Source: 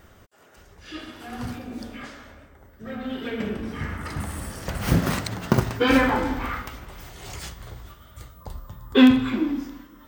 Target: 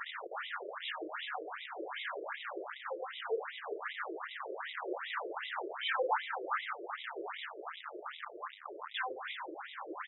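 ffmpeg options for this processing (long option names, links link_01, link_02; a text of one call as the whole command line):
ffmpeg -i in.wav -filter_complex "[0:a]aeval=exprs='val(0)+0.5*0.119*sgn(val(0))':channel_layout=same,equalizer=frequency=250:width_type=o:width=0.67:gain=3,equalizer=frequency=630:width_type=o:width=0.67:gain=-6,equalizer=frequency=2500:width_type=o:width=0.67:gain=-8,asplit=2[link_01][link_02];[link_02]aecho=0:1:355:0.211[link_03];[link_01][link_03]amix=inputs=2:normalize=0,afftfilt=real='re*between(b*sr/1024,450*pow(2800/450,0.5+0.5*sin(2*PI*2.6*pts/sr))/1.41,450*pow(2800/450,0.5+0.5*sin(2*PI*2.6*pts/sr))*1.41)':imag='im*between(b*sr/1024,450*pow(2800/450,0.5+0.5*sin(2*PI*2.6*pts/sr))/1.41,450*pow(2800/450,0.5+0.5*sin(2*PI*2.6*pts/sr))*1.41)':win_size=1024:overlap=0.75,volume=-6dB" out.wav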